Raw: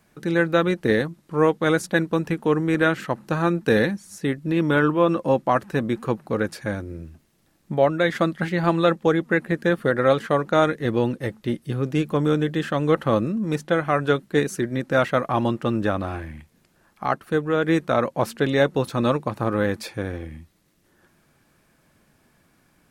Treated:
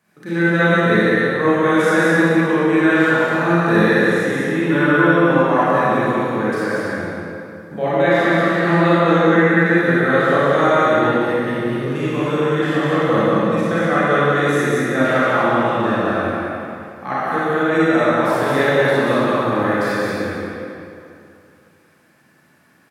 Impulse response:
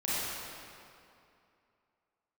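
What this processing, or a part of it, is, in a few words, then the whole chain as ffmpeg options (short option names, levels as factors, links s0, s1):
stadium PA: -filter_complex "[0:a]highpass=130,equalizer=f=1700:t=o:w=0.89:g=5,aecho=1:1:183.7|265.3:0.708|0.282[s0];[1:a]atrim=start_sample=2205[s1];[s0][s1]afir=irnorm=-1:irlink=0,volume=0.562"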